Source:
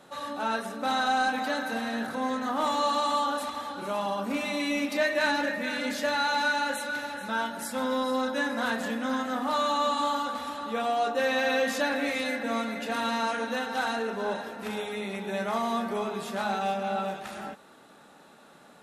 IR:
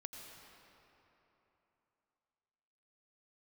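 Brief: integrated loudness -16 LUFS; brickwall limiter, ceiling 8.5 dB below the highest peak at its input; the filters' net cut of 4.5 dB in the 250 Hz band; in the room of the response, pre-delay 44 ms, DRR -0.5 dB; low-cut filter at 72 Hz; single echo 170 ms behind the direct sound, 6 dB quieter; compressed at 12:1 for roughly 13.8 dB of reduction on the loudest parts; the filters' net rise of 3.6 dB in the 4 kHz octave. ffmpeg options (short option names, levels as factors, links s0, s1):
-filter_complex "[0:a]highpass=72,equalizer=f=250:t=o:g=-5,equalizer=f=4000:t=o:g=4,acompressor=threshold=0.0158:ratio=12,alimiter=level_in=3.55:limit=0.0631:level=0:latency=1,volume=0.282,aecho=1:1:170:0.501,asplit=2[s0][s1];[1:a]atrim=start_sample=2205,adelay=44[s2];[s1][s2]afir=irnorm=-1:irlink=0,volume=1.58[s3];[s0][s3]amix=inputs=2:normalize=0,volume=13.3"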